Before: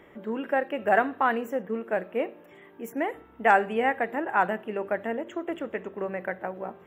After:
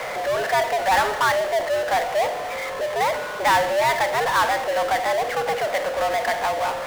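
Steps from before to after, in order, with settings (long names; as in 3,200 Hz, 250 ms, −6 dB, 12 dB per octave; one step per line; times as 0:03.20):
single-sideband voice off tune +140 Hz 380–2,200 Hz
power curve on the samples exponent 0.35
level −3.5 dB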